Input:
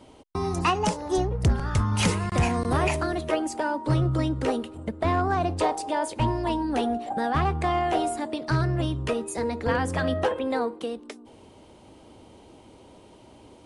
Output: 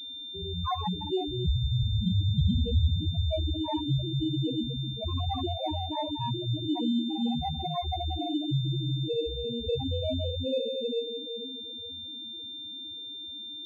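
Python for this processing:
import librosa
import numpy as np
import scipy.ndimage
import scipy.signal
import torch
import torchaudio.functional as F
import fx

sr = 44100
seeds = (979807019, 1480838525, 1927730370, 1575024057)

y = fx.low_shelf(x, sr, hz=270.0, db=5.5, at=(2.06, 2.86), fade=0.02)
y = fx.room_shoebox(y, sr, seeds[0], volume_m3=120.0, walls='hard', distance_m=0.48)
y = fx.spec_topn(y, sr, count=2)
y = fx.pwm(y, sr, carrier_hz=3600.0)
y = y * librosa.db_to_amplitude(-3.5)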